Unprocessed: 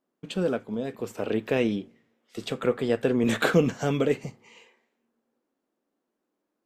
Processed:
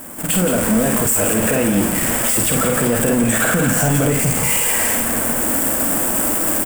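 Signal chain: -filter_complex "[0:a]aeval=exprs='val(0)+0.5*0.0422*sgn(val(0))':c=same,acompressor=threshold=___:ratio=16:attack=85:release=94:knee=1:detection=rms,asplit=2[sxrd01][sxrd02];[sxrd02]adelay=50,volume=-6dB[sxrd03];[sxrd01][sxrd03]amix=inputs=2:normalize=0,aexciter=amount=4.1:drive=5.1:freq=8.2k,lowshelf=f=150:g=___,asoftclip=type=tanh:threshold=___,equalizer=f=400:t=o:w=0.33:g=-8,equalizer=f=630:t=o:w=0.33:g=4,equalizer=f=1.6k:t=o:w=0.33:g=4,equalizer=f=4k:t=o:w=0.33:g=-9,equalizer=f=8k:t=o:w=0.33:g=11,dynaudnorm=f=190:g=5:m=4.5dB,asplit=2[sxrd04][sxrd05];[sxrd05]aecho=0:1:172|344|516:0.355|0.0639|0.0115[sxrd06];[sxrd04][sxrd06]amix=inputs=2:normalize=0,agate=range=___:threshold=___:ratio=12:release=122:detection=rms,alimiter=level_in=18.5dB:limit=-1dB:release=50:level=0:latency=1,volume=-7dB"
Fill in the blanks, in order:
-28dB, 6, -16.5dB, -17dB, -24dB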